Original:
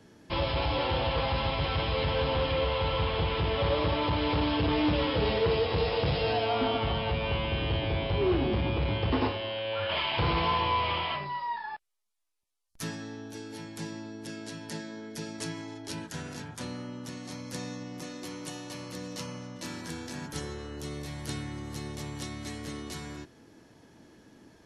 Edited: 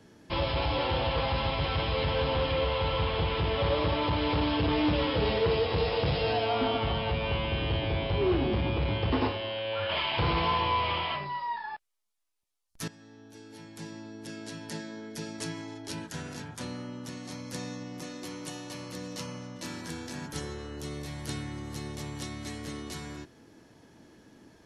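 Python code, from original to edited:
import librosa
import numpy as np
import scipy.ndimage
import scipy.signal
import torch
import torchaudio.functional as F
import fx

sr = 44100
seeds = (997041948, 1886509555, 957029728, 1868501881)

y = fx.edit(x, sr, fx.fade_in_from(start_s=12.88, length_s=1.68, floor_db=-16.5), tone=tone)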